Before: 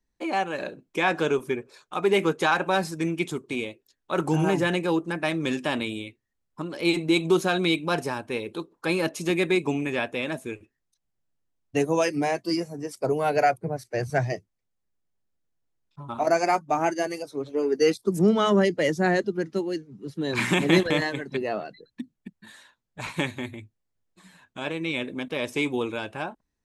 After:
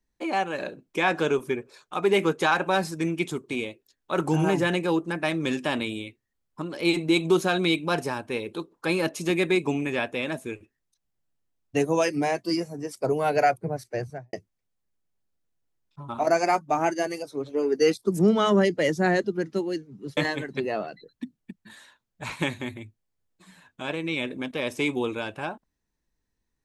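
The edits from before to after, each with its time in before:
0:13.83–0:14.33: fade out and dull
0:20.17–0:20.94: remove

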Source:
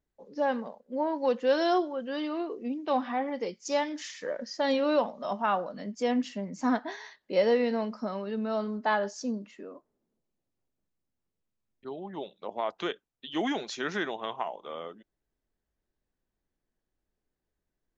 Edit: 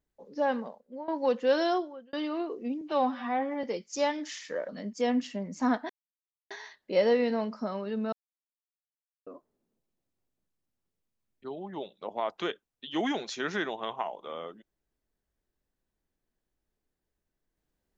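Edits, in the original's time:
0:00.64–0:01.08: fade out, to −16.5 dB
0:01.59–0:02.13: fade out
0:02.81–0:03.36: time-stretch 1.5×
0:04.41–0:05.70: remove
0:06.91: splice in silence 0.61 s
0:08.53–0:09.67: silence

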